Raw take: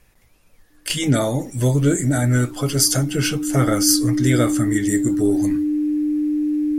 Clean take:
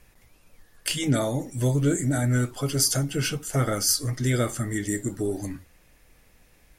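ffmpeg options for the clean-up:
ffmpeg -i in.wav -af "bandreject=frequency=300:width=30,asetnsamples=nb_out_samples=441:pad=0,asendcmd='0.9 volume volume -5.5dB',volume=0dB" out.wav

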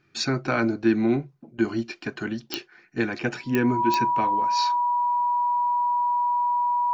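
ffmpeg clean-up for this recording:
ffmpeg -i in.wav -af "adeclick=threshold=4,bandreject=frequency=970:width=30" out.wav

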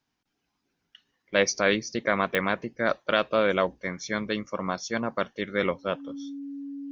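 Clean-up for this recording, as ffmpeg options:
ffmpeg -i in.wav -af "adeclick=threshold=4,bandreject=frequency=280:width=30" out.wav

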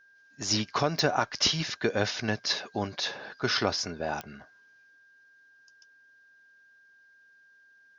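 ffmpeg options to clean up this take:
ffmpeg -i in.wav -af "adeclick=threshold=4,bandreject=frequency=1600:width=30" out.wav

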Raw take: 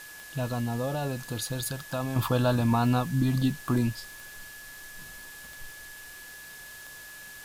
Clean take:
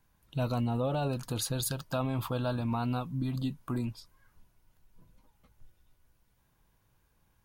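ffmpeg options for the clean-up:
ffmpeg -i in.wav -af "adeclick=threshold=4,bandreject=frequency=1700:width=30,afwtdn=0.0045,asetnsamples=nb_out_samples=441:pad=0,asendcmd='2.16 volume volume -7.5dB',volume=0dB" out.wav

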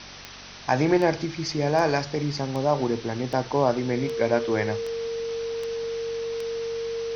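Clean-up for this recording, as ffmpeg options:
ffmpeg -i in.wav -af "adeclick=threshold=4,bandreject=frequency=47.3:width_type=h:width=4,bandreject=frequency=94.6:width_type=h:width=4,bandreject=frequency=141.9:width_type=h:width=4,bandreject=frequency=189.2:width_type=h:width=4,bandreject=frequency=236.5:width_type=h:width=4,bandreject=frequency=460:width=30,afwtdn=0.013" out.wav

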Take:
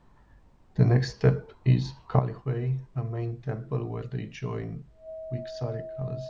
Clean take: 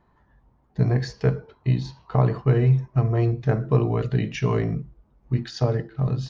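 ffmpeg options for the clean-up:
ffmpeg -i in.wav -af "bandreject=frequency=640:width=30,agate=range=-21dB:threshold=-48dB,asetnsamples=nb_out_samples=441:pad=0,asendcmd='2.19 volume volume 10.5dB',volume=0dB" out.wav

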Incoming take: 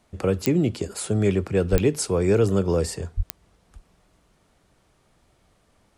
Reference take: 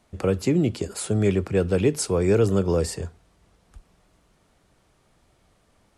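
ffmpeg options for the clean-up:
ffmpeg -i in.wav -filter_complex "[0:a]adeclick=threshold=4,asplit=3[link_01][link_02][link_03];[link_01]afade=type=out:start_time=1.71:duration=0.02[link_04];[link_02]highpass=frequency=140:width=0.5412,highpass=frequency=140:width=1.3066,afade=type=in:start_time=1.71:duration=0.02,afade=type=out:start_time=1.83:duration=0.02[link_05];[link_03]afade=type=in:start_time=1.83:duration=0.02[link_06];[link_04][link_05][link_06]amix=inputs=3:normalize=0,asplit=3[link_07][link_08][link_09];[link_07]afade=type=out:start_time=3.16:duration=0.02[link_10];[link_08]highpass=frequency=140:width=0.5412,highpass=frequency=140:width=1.3066,afade=type=in:start_time=3.16:duration=0.02,afade=type=out:start_time=3.28:duration=0.02[link_11];[link_09]afade=type=in:start_time=3.28:duration=0.02[link_12];[link_10][link_11][link_12]amix=inputs=3:normalize=0" out.wav

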